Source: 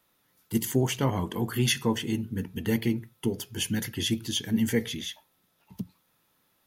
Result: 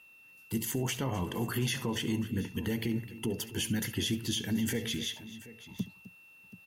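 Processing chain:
brickwall limiter −23 dBFS, peak gain reduction 11 dB
steady tone 2,700 Hz −55 dBFS
multi-tap delay 69/257/731 ms −18/−16.5/−17.5 dB

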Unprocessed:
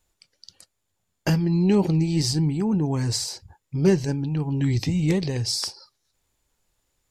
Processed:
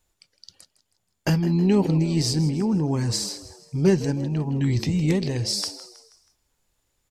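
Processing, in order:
echo with shifted repeats 160 ms, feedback 46%, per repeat +83 Hz, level −15.5 dB

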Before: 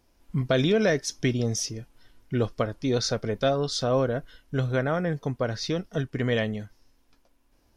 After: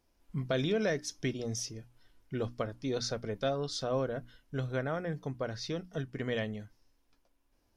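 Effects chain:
mains-hum notches 60/120/180/240/300 Hz
level −8 dB

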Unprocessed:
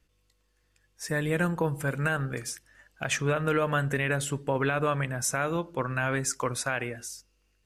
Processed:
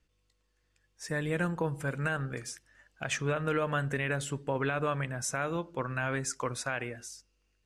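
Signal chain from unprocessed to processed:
low-pass filter 9,200 Hz 12 dB per octave
level −4 dB

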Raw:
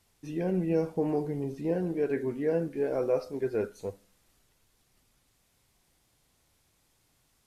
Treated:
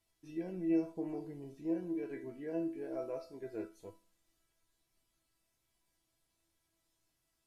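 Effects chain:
tuned comb filter 330 Hz, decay 0.32 s, harmonics all, mix 90%
level +2.5 dB

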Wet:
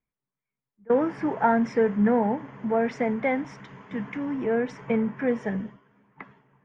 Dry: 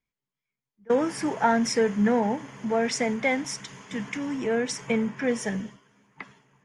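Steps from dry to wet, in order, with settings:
low-pass filter 1,700 Hz 12 dB per octave
level +1 dB

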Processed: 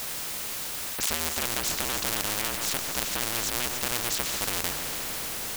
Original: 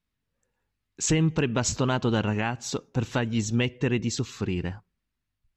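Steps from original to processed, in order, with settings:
sub-harmonics by changed cycles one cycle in 2, inverted
in parallel at −2.5 dB: compressor whose output falls as the input rises −32 dBFS
on the sum: comb and all-pass reverb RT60 3.9 s, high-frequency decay 0.9×, pre-delay 55 ms, DRR 17 dB
bit-depth reduction 8 bits, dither triangular
on a send: delay that swaps between a low-pass and a high-pass 145 ms, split 1,900 Hz, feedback 54%, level −14 dB
on the sum: every bin compressed towards the loudest bin 4 to 1
level +5 dB

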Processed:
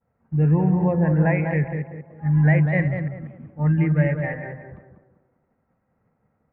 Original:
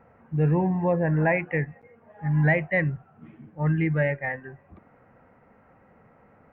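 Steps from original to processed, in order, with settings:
delay that plays each chunk backwards 140 ms, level −10.5 dB
downward expander −45 dBFS
bass and treble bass +7 dB, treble −11 dB
on a send: tape delay 192 ms, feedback 42%, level −4 dB, low-pass 1,200 Hz
on the sum: level −1.5 dB

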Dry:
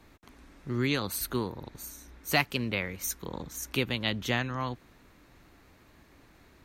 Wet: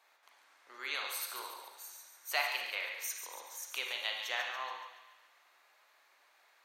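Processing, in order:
high-pass filter 650 Hz 24 dB per octave
delay with a high-pass on its return 142 ms, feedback 54%, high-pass 1,700 Hz, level −8 dB
on a send at −1.5 dB: convolution reverb RT60 0.85 s, pre-delay 34 ms
on the sum: level −6.5 dB

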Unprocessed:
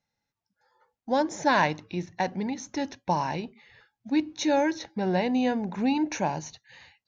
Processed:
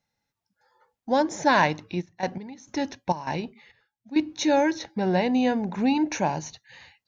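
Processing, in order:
0:02.00–0:04.18: gate pattern "..x..xxx.xxx." 101 BPM −12 dB
level +2.5 dB

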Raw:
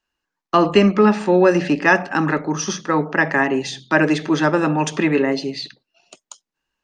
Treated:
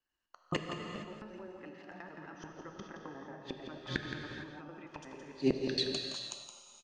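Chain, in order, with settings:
slices reordered back to front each 89 ms, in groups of 3
source passing by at 0:03.01, 8 m/s, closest 4.2 metres
treble cut that deepens with the level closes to 900 Hz, closed at −16 dBFS
downward compressor 4 to 1, threshold −32 dBFS, peak gain reduction 14.5 dB
tuned comb filter 180 Hz, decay 1.1 s, mix 60%
gate with flip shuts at −37 dBFS, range −30 dB
automatic gain control gain up to 10 dB
single-tap delay 169 ms −8.5 dB
reverb whose tail is shaped and stops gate 490 ms flat, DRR 3.5 dB
level +11.5 dB

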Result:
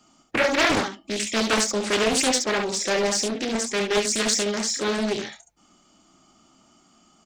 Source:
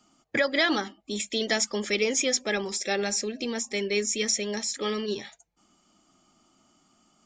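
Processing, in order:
in parallel at −3.5 dB: hard clipping −27.5 dBFS, distortion −7 dB
on the sum: ambience of single reflections 27 ms −6.5 dB, 69 ms −5 dB
highs frequency-modulated by the lows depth 0.66 ms

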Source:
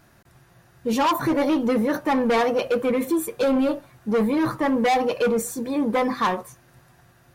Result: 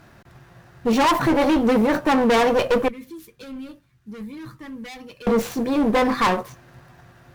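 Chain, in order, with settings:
running median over 5 samples
0:02.88–0:05.27: guitar amp tone stack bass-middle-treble 6-0-2
asymmetric clip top −28.5 dBFS
level +6.5 dB

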